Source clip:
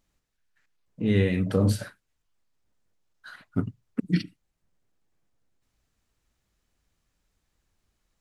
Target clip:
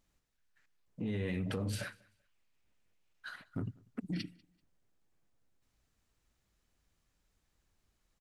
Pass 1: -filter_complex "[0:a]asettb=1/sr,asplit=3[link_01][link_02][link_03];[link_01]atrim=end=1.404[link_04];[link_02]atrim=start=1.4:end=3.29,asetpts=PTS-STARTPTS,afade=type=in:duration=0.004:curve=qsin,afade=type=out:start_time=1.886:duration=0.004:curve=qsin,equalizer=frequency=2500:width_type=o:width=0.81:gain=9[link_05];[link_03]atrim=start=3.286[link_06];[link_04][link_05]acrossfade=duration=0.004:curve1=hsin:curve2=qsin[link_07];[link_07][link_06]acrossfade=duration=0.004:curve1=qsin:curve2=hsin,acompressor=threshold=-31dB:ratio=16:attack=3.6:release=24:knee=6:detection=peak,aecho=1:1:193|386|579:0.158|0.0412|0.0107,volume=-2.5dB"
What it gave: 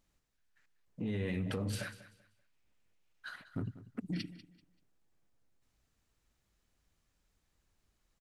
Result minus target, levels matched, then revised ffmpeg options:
echo-to-direct +10.5 dB
-filter_complex "[0:a]asettb=1/sr,asplit=3[link_01][link_02][link_03];[link_01]atrim=end=1.404[link_04];[link_02]atrim=start=1.4:end=3.29,asetpts=PTS-STARTPTS,afade=type=in:duration=0.004:curve=qsin,afade=type=out:start_time=1.886:duration=0.004:curve=qsin,equalizer=frequency=2500:width_type=o:width=0.81:gain=9[link_05];[link_03]atrim=start=3.286[link_06];[link_04][link_05]acrossfade=duration=0.004:curve1=hsin:curve2=qsin[link_07];[link_07][link_06]acrossfade=duration=0.004:curve1=qsin:curve2=hsin,acompressor=threshold=-31dB:ratio=16:attack=3.6:release=24:knee=6:detection=peak,aecho=1:1:193|386:0.0473|0.0123,volume=-2.5dB"

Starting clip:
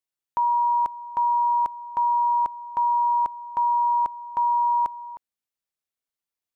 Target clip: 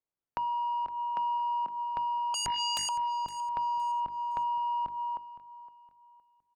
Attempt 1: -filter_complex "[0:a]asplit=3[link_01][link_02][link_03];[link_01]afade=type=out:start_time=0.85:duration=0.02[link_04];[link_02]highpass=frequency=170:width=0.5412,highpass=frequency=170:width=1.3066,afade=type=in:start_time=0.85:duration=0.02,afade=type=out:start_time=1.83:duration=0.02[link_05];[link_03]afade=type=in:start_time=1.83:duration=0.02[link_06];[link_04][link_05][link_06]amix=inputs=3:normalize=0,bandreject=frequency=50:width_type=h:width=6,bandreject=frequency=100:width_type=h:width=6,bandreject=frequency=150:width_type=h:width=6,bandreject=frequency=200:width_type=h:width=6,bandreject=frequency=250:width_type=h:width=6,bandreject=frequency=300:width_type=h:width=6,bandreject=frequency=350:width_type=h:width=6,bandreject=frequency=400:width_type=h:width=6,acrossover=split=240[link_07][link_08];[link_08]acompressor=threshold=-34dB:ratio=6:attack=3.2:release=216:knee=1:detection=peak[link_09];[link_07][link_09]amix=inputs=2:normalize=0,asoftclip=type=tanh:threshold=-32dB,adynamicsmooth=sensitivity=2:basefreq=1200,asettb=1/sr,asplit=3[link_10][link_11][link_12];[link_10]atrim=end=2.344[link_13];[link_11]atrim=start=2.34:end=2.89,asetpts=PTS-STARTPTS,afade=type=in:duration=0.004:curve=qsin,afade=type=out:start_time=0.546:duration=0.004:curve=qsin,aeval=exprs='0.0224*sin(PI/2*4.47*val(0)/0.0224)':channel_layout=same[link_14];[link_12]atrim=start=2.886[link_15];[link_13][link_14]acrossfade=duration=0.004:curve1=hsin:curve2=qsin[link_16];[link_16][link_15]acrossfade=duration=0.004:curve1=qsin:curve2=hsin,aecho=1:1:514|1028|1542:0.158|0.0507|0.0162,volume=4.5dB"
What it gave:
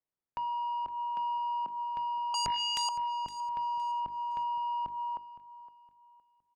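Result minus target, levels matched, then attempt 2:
soft clipping: distortion +18 dB
-filter_complex "[0:a]asplit=3[link_01][link_02][link_03];[link_01]afade=type=out:start_time=0.85:duration=0.02[link_04];[link_02]highpass=frequency=170:width=0.5412,highpass=frequency=170:width=1.3066,afade=type=in:start_time=0.85:duration=0.02,afade=type=out:start_time=1.83:duration=0.02[link_05];[link_03]afade=type=in:start_time=1.83:duration=0.02[link_06];[link_04][link_05][link_06]amix=inputs=3:normalize=0,bandreject=frequency=50:width_type=h:width=6,bandreject=frequency=100:width_type=h:width=6,bandreject=frequency=150:width_type=h:width=6,bandreject=frequency=200:width_type=h:width=6,bandreject=frequency=250:width_type=h:width=6,bandreject=frequency=300:width_type=h:width=6,bandreject=frequency=350:width_type=h:width=6,bandreject=frequency=400:width_type=h:width=6,acrossover=split=240[link_07][link_08];[link_08]acompressor=threshold=-34dB:ratio=6:attack=3.2:release=216:knee=1:detection=peak[link_09];[link_07][link_09]amix=inputs=2:normalize=0,asoftclip=type=tanh:threshold=-20.5dB,adynamicsmooth=sensitivity=2:basefreq=1200,asettb=1/sr,asplit=3[link_10][link_11][link_12];[link_10]atrim=end=2.344[link_13];[link_11]atrim=start=2.34:end=2.89,asetpts=PTS-STARTPTS,afade=type=in:duration=0.004:curve=qsin,afade=type=out:start_time=0.546:duration=0.004:curve=qsin,aeval=exprs='0.0224*sin(PI/2*4.47*val(0)/0.0224)':channel_layout=same[link_14];[link_12]atrim=start=2.886[link_15];[link_13][link_14]acrossfade=duration=0.004:curve1=hsin:curve2=qsin[link_16];[link_16][link_15]acrossfade=duration=0.004:curve1=qsin:curve2=hsin,aecho=1:1:514|1028|1542:0.158|0.0507|0.0162,volume=4.5dB"

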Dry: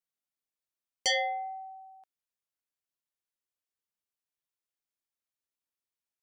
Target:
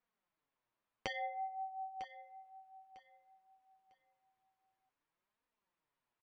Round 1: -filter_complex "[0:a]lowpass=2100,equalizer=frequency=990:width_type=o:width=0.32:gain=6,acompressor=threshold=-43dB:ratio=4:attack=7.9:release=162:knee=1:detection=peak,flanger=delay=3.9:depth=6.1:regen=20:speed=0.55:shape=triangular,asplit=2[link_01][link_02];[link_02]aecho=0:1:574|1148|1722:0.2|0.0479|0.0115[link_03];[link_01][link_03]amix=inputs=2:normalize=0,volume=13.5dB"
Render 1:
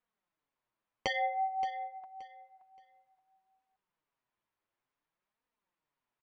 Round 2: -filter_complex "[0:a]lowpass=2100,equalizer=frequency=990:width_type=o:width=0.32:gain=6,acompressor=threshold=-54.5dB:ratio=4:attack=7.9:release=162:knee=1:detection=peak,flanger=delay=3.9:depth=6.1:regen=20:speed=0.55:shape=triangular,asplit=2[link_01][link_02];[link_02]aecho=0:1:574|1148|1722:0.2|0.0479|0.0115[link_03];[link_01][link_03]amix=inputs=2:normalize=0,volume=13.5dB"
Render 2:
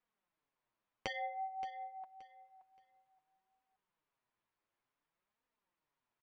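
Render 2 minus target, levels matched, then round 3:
echo 377 ms early
-filter_complex "[0:a]lowpass=2100,equalizer=frequency=990:width_type=o:width=0.32:gain=6,acompressor=threshold=-54.5dB:ratio=4:attack=7.9:release=162:knee=1:detection=peak,flanger=delay=3.9:depth=6.1:regen=20:speed=0.55:shape=triangular,asplit=2[link_01][link_02];[link_02]aecho=0:1:951|1902|2853:0.2|0.0479|0.0115[link_03];[link_01][link_03]amix=inputs=2:normalize=0,volume=13.5dB"

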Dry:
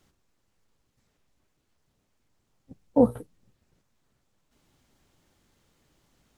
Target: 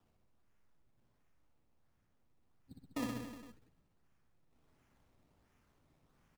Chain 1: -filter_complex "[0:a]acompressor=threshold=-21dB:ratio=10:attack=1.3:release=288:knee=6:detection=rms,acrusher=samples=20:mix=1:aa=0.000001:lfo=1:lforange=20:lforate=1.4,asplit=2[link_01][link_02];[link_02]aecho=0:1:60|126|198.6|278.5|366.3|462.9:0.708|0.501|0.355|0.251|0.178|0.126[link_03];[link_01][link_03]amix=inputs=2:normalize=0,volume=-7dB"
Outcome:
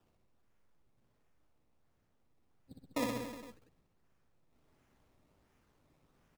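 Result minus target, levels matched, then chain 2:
500 Hz band +5.0 dB
-filter_complex "[0:a]acompressor=threshold=-21dB:ratio=10:attack=1.3:release=288:knee=6:detection=rms,equalizer=frequency=560:width=1.5:gain=-11,acrusher=samples=20:mix=1:aa=0.000001:lfo=1:lforange=20:lforate=1.4,asplit=2[link_01][link_02];[link_02]aecho=0:1:60|126|198.6|278.5|366.3|462.9:0.708|0.501|0.355|0.251|0.178|0.126[link_03];[link_01][link_03]amix=inputs=2:normalize=0,volume=-7dB"

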